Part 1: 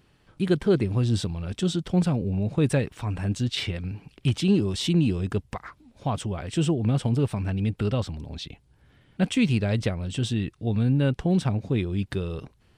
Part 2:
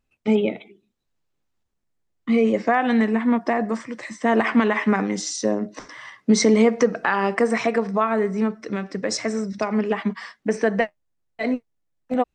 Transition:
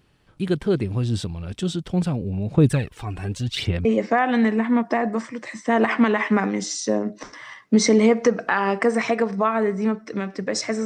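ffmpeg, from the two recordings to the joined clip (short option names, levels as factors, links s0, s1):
-filter_complex "[0:a]asettb=1/sr,asplit=3[s0][s1][s2];[s0]atrim=end=2.544[s3];[s1]atrim=start=2.54:end=3.85,asetpts=PTS-STARTPTS,afade=t=in:d=0.004:c=qsin,afade=t=out:st=1.306:d=0.004:c=qsin,aphaser=in_gain=1:out_gain=1:delay=2.8:decay=0.57:speed=0.83:type=sinusoidal[s4];[s2]atrim=start=3.846[s5];[s3][s4]acrossfade=d=0.004:c1=hsin:c2=qsin[s6];[s6][s5]acrossfade=d=0.004:c1=qsin:c2=hsin,apad=whole_dur=10.85,atrim=end=10.85,atrim=end=3.852[s7];[1:a]atrim=start=2.408:end=9.41[s8];[s7][s8]acrossfade=d=0.004:c1=hsin:c2=hsin"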